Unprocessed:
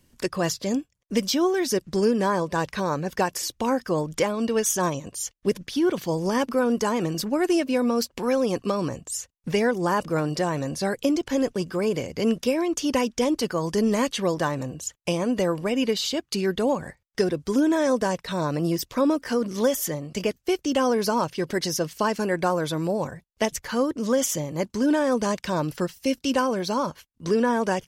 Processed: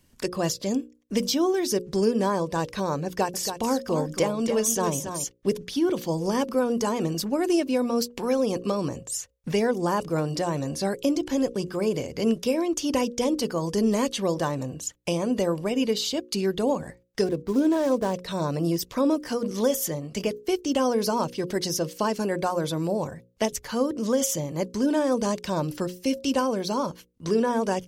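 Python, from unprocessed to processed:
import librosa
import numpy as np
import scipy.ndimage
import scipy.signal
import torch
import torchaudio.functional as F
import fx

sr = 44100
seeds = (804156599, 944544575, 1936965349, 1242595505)

y = fx.echo_single(x, sr, ms=278, db=-8.0, at=(3.06, 5.24))
y = fx.median_filter(y, sr, points=15, at=(17.26, 18.14))
y = fx.hum_notches(y, sr, base_hz=60, count=9)
y = fx.dynamic_eq(y, sr, hz=1700.0, q=1.1, threshold_db=-42.0, ratio=4.0, max_db=-6)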